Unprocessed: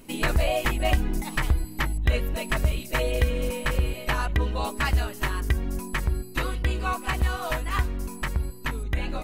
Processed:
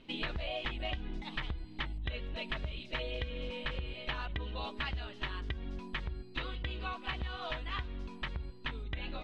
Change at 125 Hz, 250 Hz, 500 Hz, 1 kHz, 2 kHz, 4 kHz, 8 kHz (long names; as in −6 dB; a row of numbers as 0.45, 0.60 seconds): −14.5 dB, −12.5 dB, −13.0 dB, −12.5 dB, −10.5 dB, −5.5 dB, below −25 dB